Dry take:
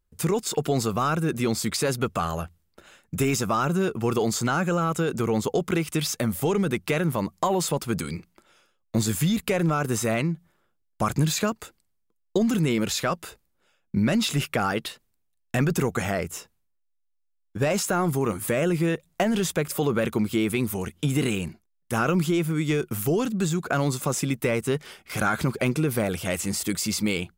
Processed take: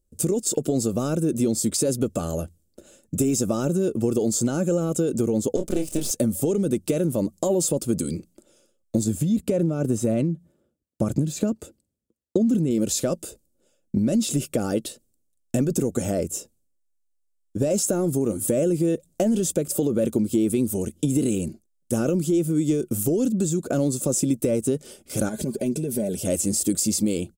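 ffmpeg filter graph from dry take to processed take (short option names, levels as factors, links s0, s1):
-filter_complex "[0:a]asettb=1/sr,asplit=3[s0][s1][s2];[s0]atrim=end=5.564[s3];[s1]atrim=start=5.56:end=6.11,asetpts=PTS-STARTPTS,afade=t=in:d=0.004:c=qsin,afade=t=out:st=0.546:d=0.004:c=qsin,highpass=160,aeval=exprs='max(val(0),0)':c=same,asplit=2[s4][s5];[s5]adelay=28,volume=0.473[s6];[s4][s6]amix=inputs=2:normalize=0,atrim=end_sample=24255[s7];[s2]atrim=start=6.106[s8];[s3][s7]acrossfade=d=0.004:c1=hsin:c2=qsin[s9];[s9][s8]acrossfade=d=0.004:c1=qsin:c2=hsin,asettb=1/sr,asplit=3[s10][s11][s12];[s10]atrim=end=9.044[s13];[s11]atrim=start=9.04:end=12.71,asetpts=PTS-STARTPTS,afade=t=in:d=0.004:c=qsin,afade=t=out:st=3.666:d=0.004:c=qsin,highpass=53,bass=f=250:g=4,treble=f=4000:g=-8[s14];[s12]atrim=start=12.706[s15];[s13][s14]acrossfade=d=0.004:c1=hsin:c2=qsin[s16];[s16][s15]acrossfade=d=0.004:c1=qsin:c2=hsin,asettb=1/sr,asplit=3[s17][s18][s19];[s17]atrim=end=25.294[s20];[s18]atrim=start=25.29:end=26.23,asetpts=PTS-STARTPTS,afade=t=in:d=0.004:c=qsin,afade=t=out:st=0.936:d=0.004:c=qsin,aecho=1:1:4.9:0.55,atrim=end_sample=41454,acompressor=threshold=0.0355:ratio=3:attack=3.2:release=140:knee=1:detection=peak,asuperstop=centerf=1300:order=20:qfactor=4.8[s21];[s19]atrim=start=26.226[s22];[s20][s21]acrossfade=d=0.004:c1=hsin:c2=qsin[s23];[s23][s22]acrossfade=d=0.004:c1=qsin:c2=hsin,equalizer=f=125:t=o:w=1:g=4,equalizer=f=250:t=o:w=1:g=5,equalizer=f=500:t=o:w=1:g=9,equalizer=f=1000:t=o:w=1:g=-12,equalizer=f=2000:t=o:w=1:g=-12,equalizer=f=4000:t=o:w=1:g=-3,equalizer=f=8000:t=o:w=1:g=9,acompressor=threshold=0.126:ratio=6,aecho=1:1:3.4:0.31"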